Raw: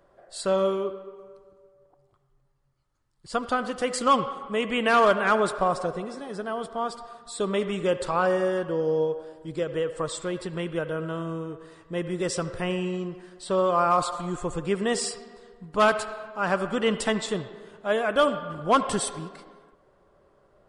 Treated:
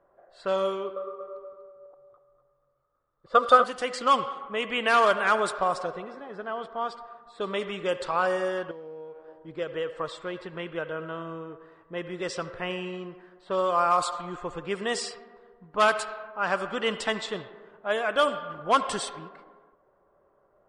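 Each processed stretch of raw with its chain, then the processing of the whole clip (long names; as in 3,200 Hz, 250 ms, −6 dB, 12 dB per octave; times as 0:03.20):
0:00.96–0:03.64: hollow resonant body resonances 530/1,200/3,600 Hz, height 15 dB, ringing for 25 ms + repeating echo 242 ms, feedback 30%, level −8.5 dB
0:08.71–0:09.28: mu-law and A-law mismatch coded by A + downward compressor 3 to 1, threshold −39 dBFS
whole clip: low-pass that shuts in the quiet parts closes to 1,200 Hz, open at −18 dBFS; low-shelf EQ 390 Hz −12 dB; level +1 dB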